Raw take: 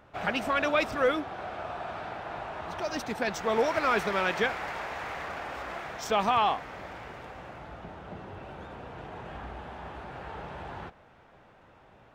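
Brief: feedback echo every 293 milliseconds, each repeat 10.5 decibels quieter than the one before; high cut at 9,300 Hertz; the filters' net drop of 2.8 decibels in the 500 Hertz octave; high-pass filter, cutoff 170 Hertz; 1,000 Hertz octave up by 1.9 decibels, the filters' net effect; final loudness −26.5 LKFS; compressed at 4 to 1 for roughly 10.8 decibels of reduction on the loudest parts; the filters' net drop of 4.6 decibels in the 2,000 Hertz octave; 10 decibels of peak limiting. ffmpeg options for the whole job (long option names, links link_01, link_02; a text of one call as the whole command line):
ffmpeg -i in.wav -af "highpass=170,lowpass=9300,equalizer=frequency=500:width_type=o:gain=-5,equalizer=frequency=1000:width_type=o:gain=6.5,equalizer=frequency=2000:width_type=o:gain=-9,acompressor=threshold=-33dB:ratio=4,alimiter=level_in=6.5dB:limit=-24dB:level=0:latency=1,volume=-6.5dB,aecho=1:1:293|586|879:0.299|0.0896|0.0269,volume=13.5dB" out.wav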